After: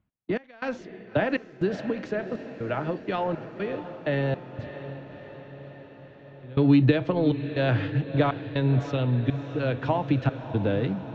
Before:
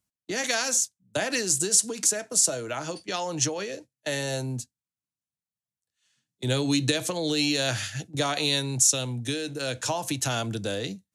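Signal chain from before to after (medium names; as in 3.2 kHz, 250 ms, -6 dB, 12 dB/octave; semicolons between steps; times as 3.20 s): in parallel at -6.5 dB: crossover distortion -35.5 dBFS; on the sum: bass shelf 330 Hz +7.5 dB; reverse; upward compressor, threshold -28 dBFS; reverse; Bessel low-pass 1.9 kHz, order 6; trance gate "xxx..xxx" 121 bpm -24 dB; echo that smears into a reverb 610 ms, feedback 64%, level -12 dB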